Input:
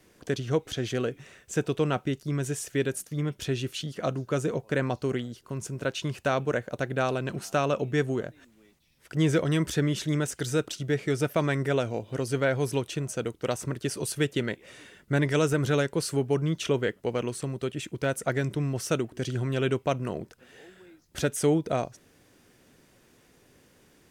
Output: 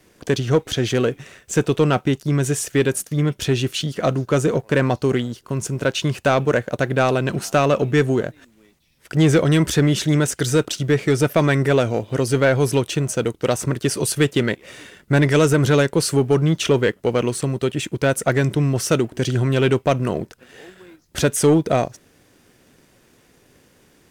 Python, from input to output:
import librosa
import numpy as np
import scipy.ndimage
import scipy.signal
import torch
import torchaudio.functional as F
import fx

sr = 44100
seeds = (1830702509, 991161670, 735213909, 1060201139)

y = fx.leveller(x, sr, passes=1)
y = y * 10.0 ** (6.5 / 20.0)